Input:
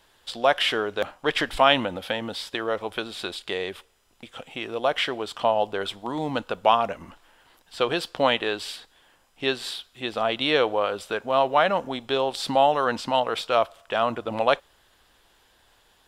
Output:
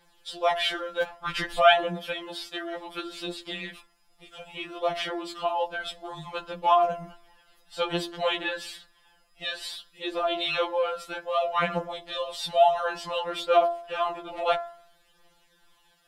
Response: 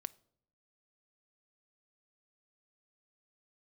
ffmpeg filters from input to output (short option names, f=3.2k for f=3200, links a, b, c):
-filter_complex "[0:a]aphaser=in_gain=1:out_gain=1:delay=1.6:decay=0.4:speed=0.59:type=triangular,bandreject=f=68.55:t=h:w=4,bandreject=f=137.1:t=h:w=4,bandreject=f=205.65:t=h:w=4,bandreject=f=274.2:t=h:w=4,bandreject=f=342.75:t=h:w=4,bandreject=f=411.3:t=h:w=4,bandreject=f=479.85:t=h:w=4,bandreject=f=548.4:t=h:w=4,bandreject=f=616.95:t=h:w=4,bandreject=f=685.5:t=h:w=4,bandreject=f=754.05:t=h:w=4,bandreject=f=822.6:t=h:w=4,bandreject=f=891.15:t=h:w=4,bandreject=f=959.7:t=h:w=4,bandreject=f=1.02825k:t=h:w=4,bandreject=f=1.0968k:t=h:w=4,bandreject=f=1.16535k:t=h:w=4,bandreject=f=1.2339k:t=h:w=4,bandreject=f=1.30245k:t=h:w=4,bandreject=f=1.371k:t=h:w=4,bandreject=f=1.43955k:t=h:w=4,bandreject=f=1.5081k:t=h:w=4,bandreject=f=1.57665k:t=h:w=4,bandreject=f=1.6452k:t=h:w=4,bandreject=f=1.71375k:t=h:w=4,bandreject=f=1.7823k:t=h:w=4,bandreject=f=1.85085k:t=h:w=4,bandreject=f=1.9194k:t=h:w=4,bandreject=f=1.98795k:t=h:w=4,bandreject=f=2.0565k:t=h:w=4,bandreject=f=2.12505k:t=h:w=4,asplit=2[a][b];[1:a]atrim=start_sample=2205[c];[b][c]afir=irnorm=-1:irlink=0,volume=-4dB[d];[a][d]amix=inputs=2:normalize=0,afftfilt=real='re*2.83*eq(mod(b,8),0)':imag='im*2.83*eq(mod(b,8),0)':win_size=2048:overlap=0.75,volume=-5dB"